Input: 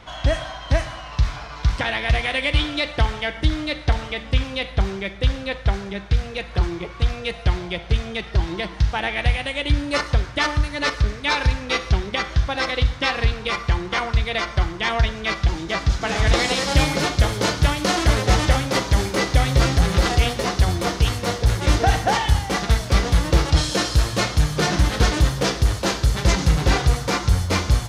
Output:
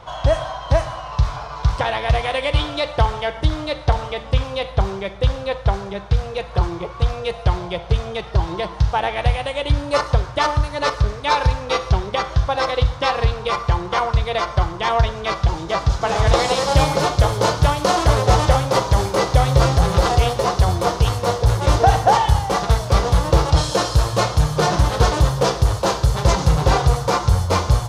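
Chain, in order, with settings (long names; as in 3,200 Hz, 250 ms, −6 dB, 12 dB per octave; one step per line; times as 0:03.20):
octave-band graphic EQ 125/250/500/1,000/2,000 Hz +6/−7/+6/+8/−6 dB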